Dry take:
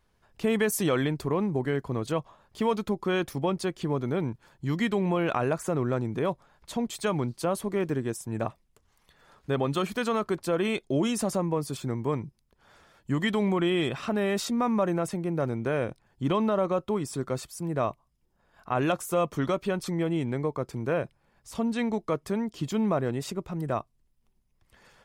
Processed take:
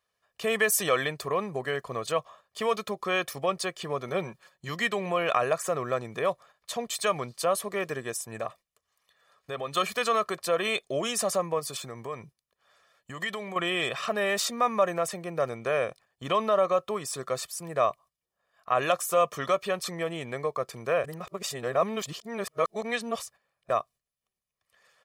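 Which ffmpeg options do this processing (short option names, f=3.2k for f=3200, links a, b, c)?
-filter_complex "[0:a]asettb=1/sr,asplit=3[a][b][c];[a]atrim=end=4.084[d];[b]atrim=start=4.08:end=4.69,asetpts=PTS-STARTPTS,afade=t=in:d=0.004:c=qsin,afade=t=out:st=0.606:d=0.004:c=qsin,aecho=1:1:5.4:0.51,atrim=end_sample=26901[e];[c]atrim=start=4.686[f];[d][e]acrossfade=d=0.004:c1=hsin:c2=qsin[g];[g][f]acrossfade=d=0.004:c1=qsin:c2=hsin,asettb=1/sr,asplit=3[h][i][j];[h]atrim=end=8.374[k];[i]atrim=start=8.37:end=9.77,asetpts=PTS-STARTPTS,afade=t=in:d=0.004:c=qsin,afade=t=out:st=1.396:d=0.004:c=qsin,acompressor=threshold=-30dB:ratio=2.5:attack=3.2:release=140:knee=1:detection=peak[l];[j]atrim=start=9.766[m];[k][l]acrossfade=d=0.004:c1=hsin:c2=qsin[n];[n][m]acrossfade=d=0.004:c1=qsin:c2=hsin,asettb=1/sr,asplit=3[o][p][q];[o]atrim=end=11.594[r];[p]atrim=start=11.59:end=13.56,asetpts=PTS-STARTPTS,afade=t=in:d=0.004:c=qsin,afade=t=out:st=1.966:d=0.004:c=qsin,acompressor=threshold=-28dB:ratio=6:attack=3.2:release=140:knee=1:detection=peak[s];[q]atrim=start=13.556[t];[r][s]acrossfade=d=0.004:c1=hsin:c2=qsin[u];[u][t]acrossfade=d=0.004:c1=qsin:c2=hsin,asplit=3[v][w][x];[v]atrim=end=21.042[y];[w]atrim=start=21.038:end=23.702,asetpts=PTS-STARTPTS,areverse[z];[x]atrim=start=23.698[aa];[y][z]acrossfade=d=0.004:c1=hsin:c2=hsin[ab];[ab][aa]acrossfade=d=0.004:c1=hsin:c2=hsin,highpass=f=850:p=1,agate=range=-10dB:threshold=-56dB:ratio=16:detection=peak,aecho=1:1:1.7:0.59,volume=4.5dB"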